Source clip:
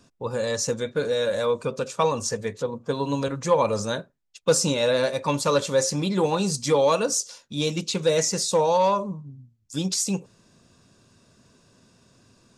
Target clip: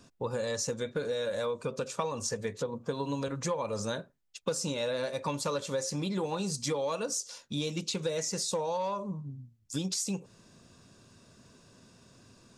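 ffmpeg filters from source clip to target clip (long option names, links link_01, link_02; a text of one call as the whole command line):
ffmpeg -i in.wav -af "acompressor=threshold=-30dB:ratio=6" out.wav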